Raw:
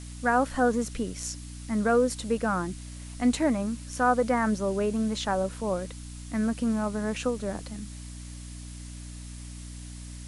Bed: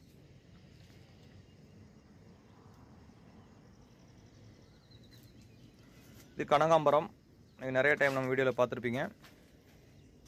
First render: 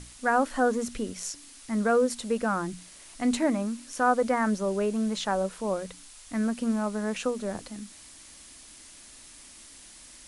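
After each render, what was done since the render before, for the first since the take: notches 60/120/180/240/300 Hz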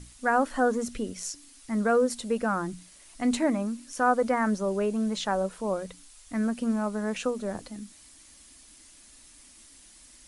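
denoiser 6 dB, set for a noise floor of -50 dBFS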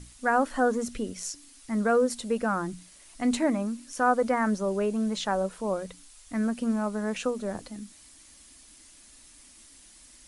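nothing audible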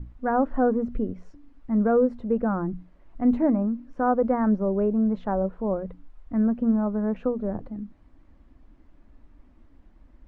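LPF 1200 Hz 12 dB/oct; tilt -2.5 dB/oct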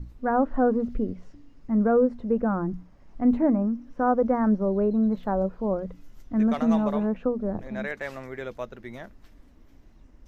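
add bed -5.5 dB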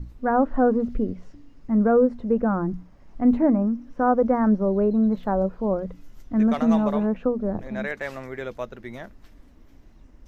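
gain +2.5 dB

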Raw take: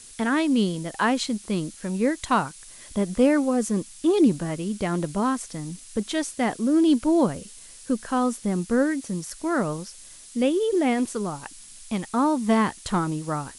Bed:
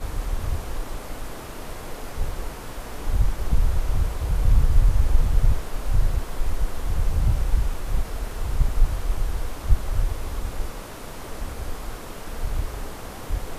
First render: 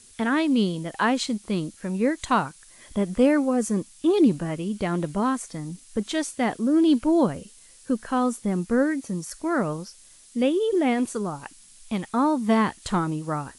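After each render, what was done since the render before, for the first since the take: noise print and reduce 6 dB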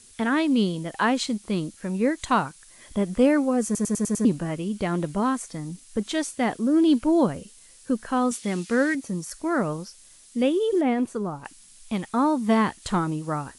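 3.65 stutter in place 0.10 s, 6 plays; 8.31–8.95 weighting filter D; 10.81–11.45 high shelf 2600 Hz -10.5 dB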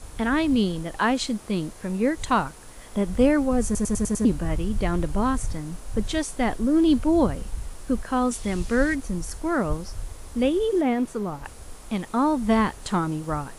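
add bed -11 dB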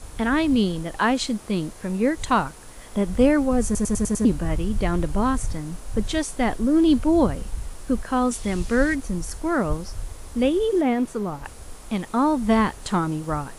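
gain +1.5 dB

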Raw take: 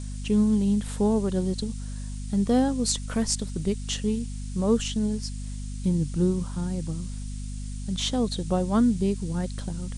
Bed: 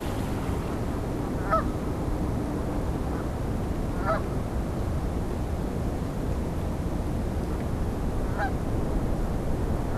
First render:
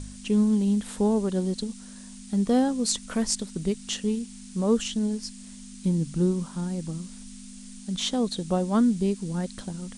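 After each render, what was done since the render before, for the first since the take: de-hum 50 Hz, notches 3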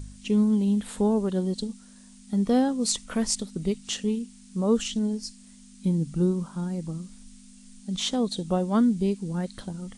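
noise print and reduce 7 dB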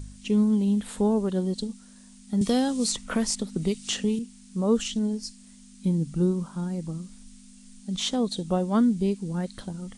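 2.41–4.19 three-band squash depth 70%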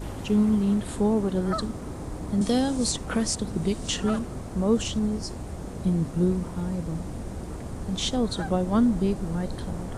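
add bed -6.5 dB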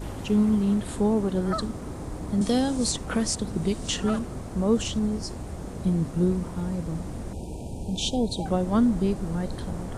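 7.33–8.46 brick-wall FIR band-stop 980–2300 Hz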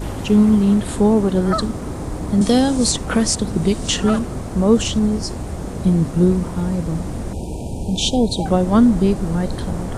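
gain +8.5 dB

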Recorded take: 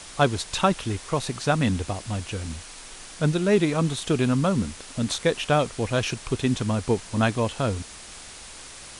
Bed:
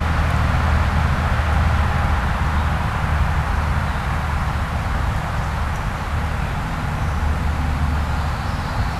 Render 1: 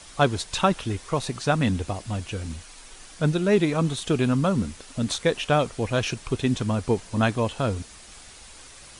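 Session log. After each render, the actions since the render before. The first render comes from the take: denoiser 6 dB, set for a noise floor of -43 dBFS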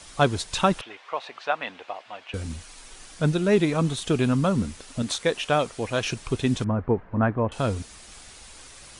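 0.81–2.34 Chebyshev band-pass 680–2900 Hz; 5.02–6.05 low shelf 180 Hz -9 dB; 6.64–7.52 LPF 1700 Hz 24 dB/oct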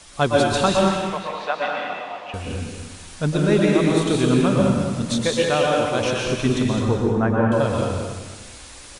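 on a send: echo 0.211 s -8.5 dB; on the sum: plate-style reverb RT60 1.3 s, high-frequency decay 0.95×, pre-delay 0.105 s, DRR -2 dB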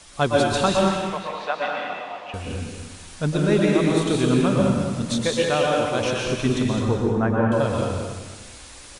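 gain -1.5 dB

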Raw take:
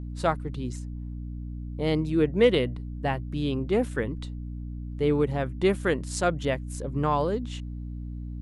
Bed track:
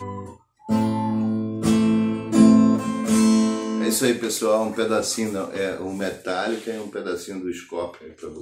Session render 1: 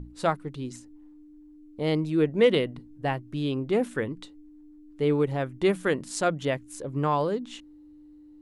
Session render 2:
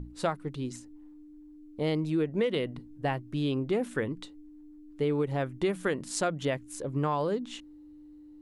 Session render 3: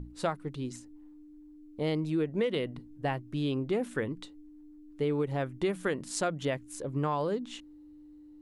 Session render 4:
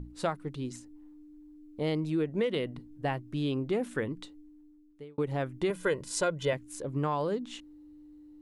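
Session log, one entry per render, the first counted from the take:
notches 60/120/180/240 Hz
compressor 10:1, threshold -24 dBFS, peak gain reduction 10 dB
gain -1.5 dB
4.31–5.18 fade out linear; 5.7–6.53 comb 2 ms

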